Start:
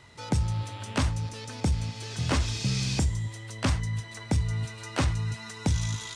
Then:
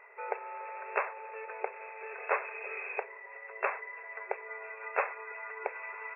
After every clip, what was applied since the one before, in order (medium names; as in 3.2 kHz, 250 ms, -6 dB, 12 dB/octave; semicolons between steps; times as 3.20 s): FFT band-pass 380–2700 Hz; trim +2 dB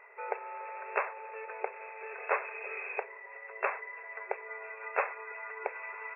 no audible change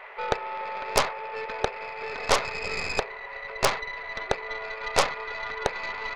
tracing distortion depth 0.43 ms; band noise 510–2300 Hz -55 dBFS; band-stop 1.6 kHz, Q 14; trim +8.5 dB